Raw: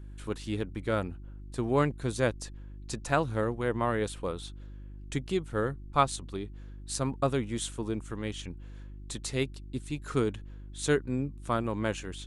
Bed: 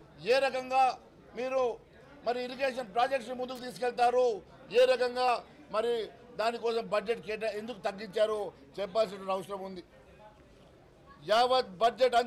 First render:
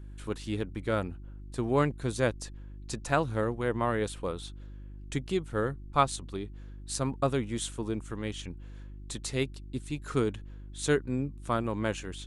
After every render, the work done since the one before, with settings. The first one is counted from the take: no audible change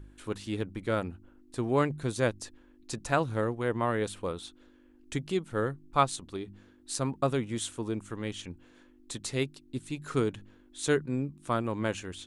de-hum 50 Hz, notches 4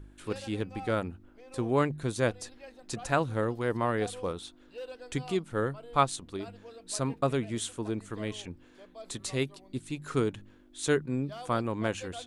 add bed -18 dB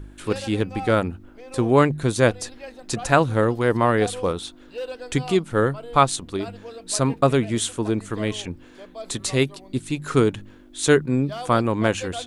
trim +10 dB; peak limiter -3 dBFS, peak gain reduction 3 dB

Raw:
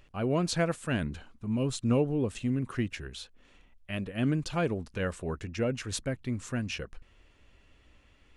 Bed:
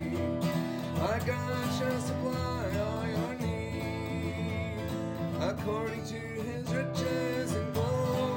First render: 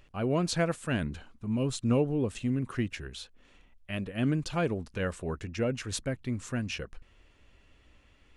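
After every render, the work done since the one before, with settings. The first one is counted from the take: no audible change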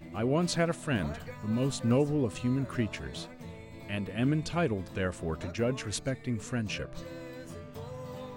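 add bed -12 dB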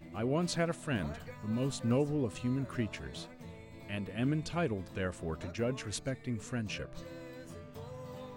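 trim -4 dB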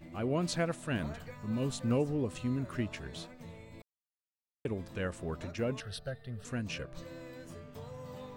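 3.82–4.65 s: mute; 5.80–6.45 s: static phaser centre 1.5 kHz, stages 8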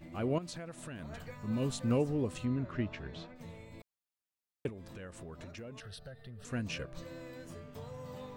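0.38–1.13 s: compression 8:1, threshold -40 dBFS; 2.45–3.36 s: distance through air 170 m; 4.69–6.50 s: compression 5:1, threshold -44 dBFS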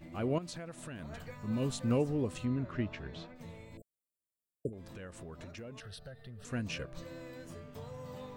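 3.77–4.73 s: brick-wall FIR band-stop 670–7000 Hz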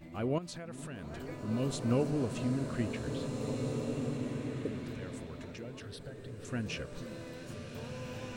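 repeats whose band climbs or falls 477 ms, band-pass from 190 Hz, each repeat 0.7 oct, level -10.5 dB; swelling reverb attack 1950 ms, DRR 2.5 dB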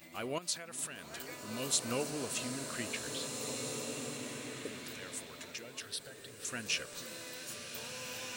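tilt EQ +4.5 dB/octave

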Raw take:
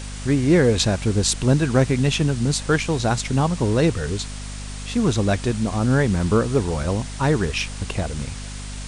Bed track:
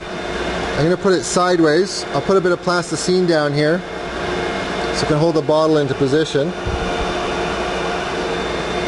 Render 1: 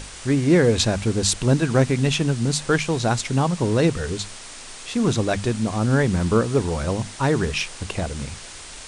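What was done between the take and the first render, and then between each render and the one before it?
hum notches 50/100/150/200/250 Hz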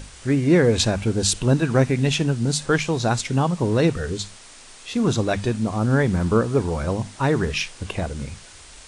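noise print and reduce 6 dB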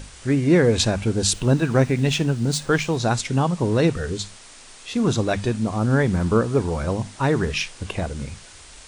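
1.34–2.97 s: median filter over 3 samples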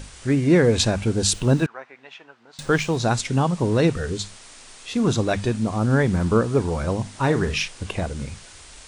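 1.66–2.59 s: ladder band-pass 1.3 kHz, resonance 20%; 7.10–7.68 s: doubling 40 ms -11 dB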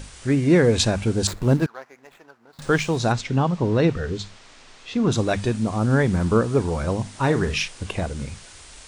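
1.27–2.62 s: median filter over 15 samples; 3.12–5.12 s: distance through air 110 m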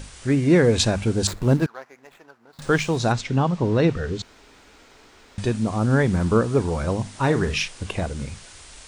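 4.22–5.38 s: room tone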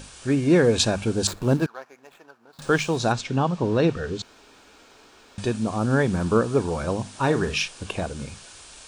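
bass shelf 110 Hz -9.5 dB; band-stop 2 kHz, Q 7.5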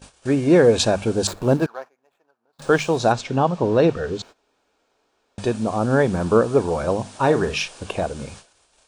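gate -42 dBFS, range -19 dB; peaking EQ 620 Hz +7 dB 1.5 oct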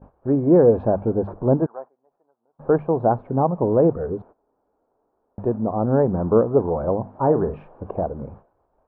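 low-pass 1 kHz 24 dB/octave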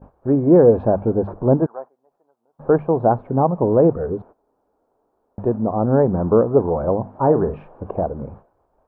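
trim +2.5 dB; peak limiter -3 dBFS, peak gain reduction 1.5 dB

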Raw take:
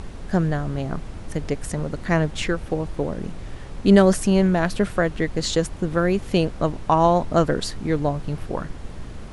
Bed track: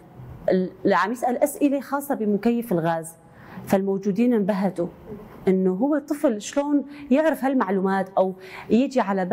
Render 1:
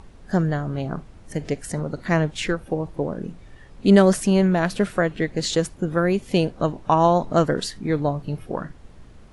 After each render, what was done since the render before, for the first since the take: noise print and reduce 11 dB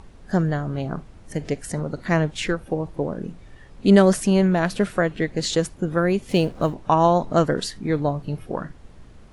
6.29–6.74 s: companding laws mixed up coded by mu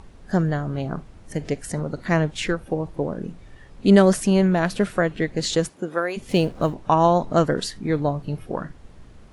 5.68–6.16 s: high-pass 170 Hz -> 690 Hz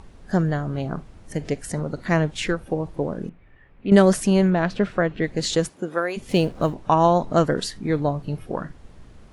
3.29–3.92 s: four-pole ladder low-pass 2.8 kHz, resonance 40%; 4.50–5.24 s: distance through air 130 m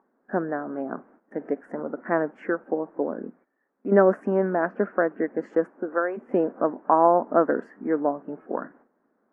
elliptic band-pass 240–1600 Hz, stop band 40 dB; gate -52 dBFS, range -14 dB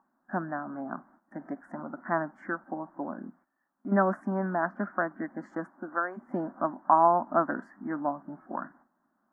static phaser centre 1.1 kHz, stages 4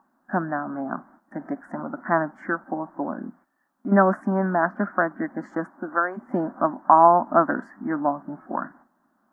trim +7 dB; peak limiter -2 dBFS, peak gain reduction 1.5 dB

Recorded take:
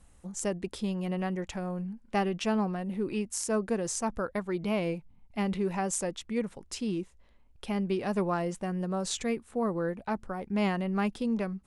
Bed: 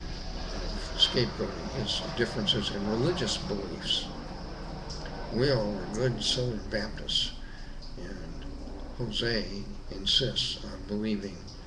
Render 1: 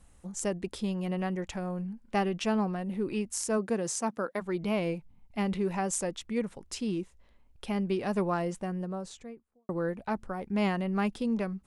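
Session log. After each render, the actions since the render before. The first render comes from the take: 3.57–4.40 s: high-pass 58 Hz -> 240 Hz 24 dB/octave; 8.40–9.69 s: studio fade out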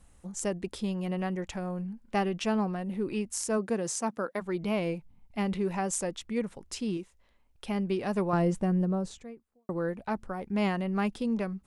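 6.97–7.66 s: bass shelf 470 Hz -6.5 dB; 8.33–9.18 s: bass shelf 420 Hz +10 dB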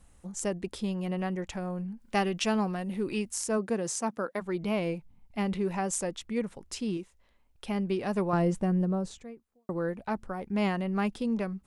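2.00–3.31 s: treble shelf 2.1 kHz +7 dB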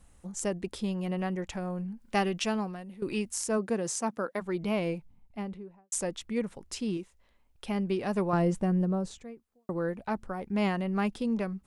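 2.30–3.02 s: fade out, to -16 dB; 4.94–5.92 s: studio fade out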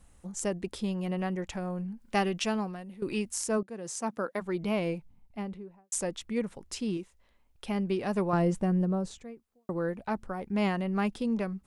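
3.63–4.16 s: fade in, from -20.5 dB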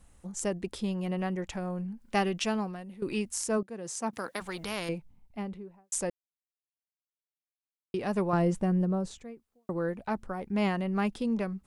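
4.13–4.89 s: spectrum-flattening compressor 2:1; 6.10–7.94 s: mute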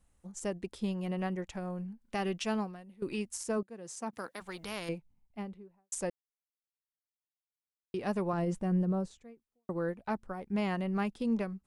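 peak limiter -22.5 dBFS, peak gain reduction 7 dB; upward expansion 1.5:1, over -49 dBFS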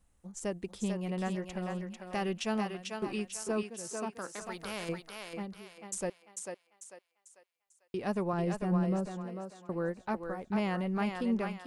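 thinning echo 445 ms, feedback 38%, high-pass 470 Hz, level -3.5 dB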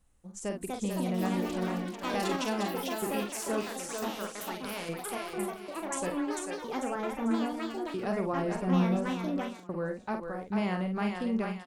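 doubling 49 ms -6 dB; ever faster or slower copies 340 ms, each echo +4 st, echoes 3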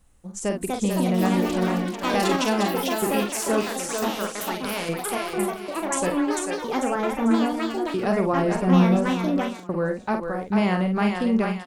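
trim +9 dB

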